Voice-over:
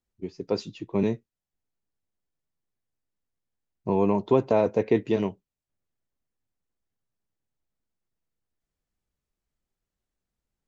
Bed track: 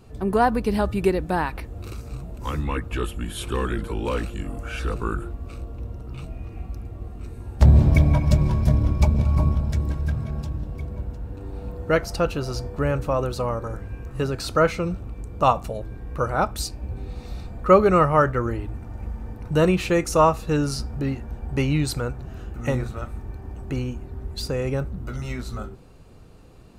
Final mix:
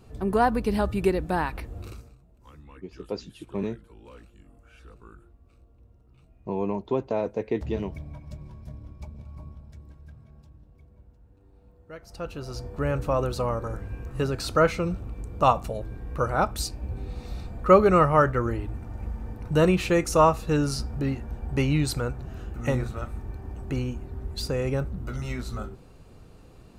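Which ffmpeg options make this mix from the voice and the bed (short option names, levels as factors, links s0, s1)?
-filter_complex "[0:a]adelay=2600,volume=0.531[s0];[1:a]volume=8.41,afade=t=out:st=1.78:d=0.37:silence=0.1,afade=t=in:st=11.98:d=1.16:silence=0.0891251[s1];[s0][s1]amix=inputs=2:normalize=0"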